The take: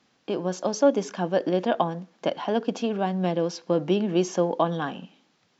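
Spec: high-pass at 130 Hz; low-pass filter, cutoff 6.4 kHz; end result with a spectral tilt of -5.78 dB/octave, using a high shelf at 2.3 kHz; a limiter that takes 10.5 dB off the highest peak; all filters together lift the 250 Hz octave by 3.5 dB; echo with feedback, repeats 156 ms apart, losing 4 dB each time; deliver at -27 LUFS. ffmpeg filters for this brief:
-af "highpass=130,lowpass=6400,equalizer=f=250:t=o:g=5.5,highshelf=f=2300:g=4.5,alimiter=limit=0.15:level=0:latency=1,aecho=1:1:156|312|468|624|780|936|1092|1248|1404:0.631|0.398|0.25|0.158|0.0994|0.0626|0.0394|0.0249|0.0157,volume=0.794"

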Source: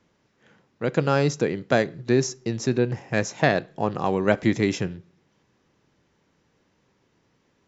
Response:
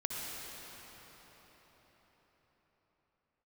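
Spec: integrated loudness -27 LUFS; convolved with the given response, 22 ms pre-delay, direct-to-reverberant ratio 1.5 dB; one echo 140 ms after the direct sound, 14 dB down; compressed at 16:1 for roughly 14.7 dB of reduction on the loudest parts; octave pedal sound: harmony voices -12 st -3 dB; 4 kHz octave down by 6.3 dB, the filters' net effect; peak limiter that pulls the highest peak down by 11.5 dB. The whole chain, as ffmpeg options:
-filter_complex "[0:a]equalizer=f=4000:t=o:g=-8.5,acompressor=threshold=0.0355:ratio=16,alimiter=level_in=1.19:limit=0.0631:level=0:latency=1,volume=0.841,aecho=1:1:140:0.2,asplit=2[s0][s1];[1:a]atrim=start_sample=2205,adelay=22[s2];[s1][s2]afir=irnorm=-1:irlink=0,volume=0.562[s3];[s0][s3]amix=inputs=2:normalize=0,asplit=2[s4][s5];[s5]asetrate=22050,aresample=44100,atempo=2,volume=0.708[s6];[s4][s6]amix=inputs=2:normalize=0,volume=2.66"

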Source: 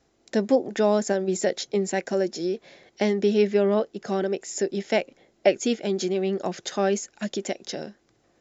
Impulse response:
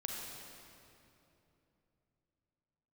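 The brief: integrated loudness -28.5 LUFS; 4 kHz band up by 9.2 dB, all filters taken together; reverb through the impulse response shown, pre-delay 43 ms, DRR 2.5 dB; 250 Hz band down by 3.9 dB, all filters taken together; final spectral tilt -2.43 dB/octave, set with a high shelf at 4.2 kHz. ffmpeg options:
-filter_complex "[0:a]equalizer=f=250:t=o:g=-5.5,equalizer=f=4000:t=o:g=6.5,highshelf=f=4200:g=9,asplit=2[s0][s1];[1:a]atrim=start_sample=2205,adelay=43[s2];[s1][s2]afir=irnorm=-1:irlink=0,volume=0.668[s3];[s0][s3]amix=inputs=2:normalize=0,volume=0.531"

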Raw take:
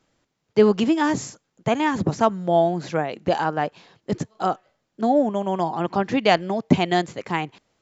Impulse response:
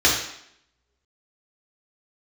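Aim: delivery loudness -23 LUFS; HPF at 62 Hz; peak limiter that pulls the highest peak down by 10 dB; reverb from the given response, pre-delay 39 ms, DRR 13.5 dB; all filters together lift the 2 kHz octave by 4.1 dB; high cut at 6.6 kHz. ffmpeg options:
-filter_complex "[0:a]highpass=62,lowpass=6600,equalizer=f=2000:t=o:g=5,alimiter=limit=0.282:level=0:latency=1,asplit=2[s0][s1];[1:a]atrim=start_sample=2205,adelay=39[s2];[s1][s2]afir=irnorm=-1:irlink=0,volume=0.0224[s3];[s0][s3]amix=inputs=2:normalize=0,volume=1.12"

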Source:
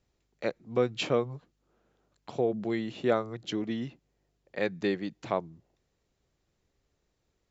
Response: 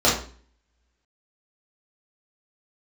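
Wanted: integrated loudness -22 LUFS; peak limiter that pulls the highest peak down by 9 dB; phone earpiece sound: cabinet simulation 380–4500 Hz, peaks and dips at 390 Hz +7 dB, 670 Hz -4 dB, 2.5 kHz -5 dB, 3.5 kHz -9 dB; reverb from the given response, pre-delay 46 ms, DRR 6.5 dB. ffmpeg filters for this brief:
-filter_complex "[0:a]alimiter=limit=0.0841:level=0:latency=1,asplit=2[s0][s1];[1:a]atrim=start_sample=2205,adelay=46[s2];[s1][s2]afir=irnorm=-1:irlink=0,volume=0.0501[s3];[s0][s3]amix=inputs=2:normalize=0,highpass=380,equalizer=f=390:t=q:w=4:g=7,equalizer=f=670:t=q:w=4:g=-4,equalizer=f=2500:t=q:w=4:g=-5,equalizer=f=3500:t=q:w=4:g=-9,lowpass=f=4500:w=0.5412,lowpass=f=4500:w=1.3066,volume=4.47"

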